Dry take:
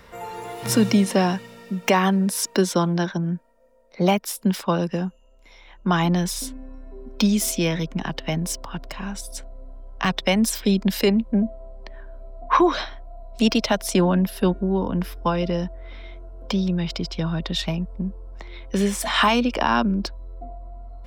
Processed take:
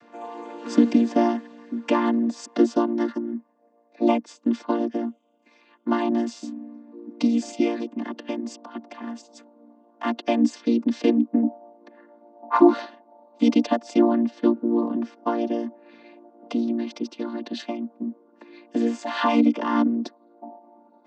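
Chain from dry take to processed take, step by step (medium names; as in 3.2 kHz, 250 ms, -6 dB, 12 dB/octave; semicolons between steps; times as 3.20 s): vocoder on a held chord major triad, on A#3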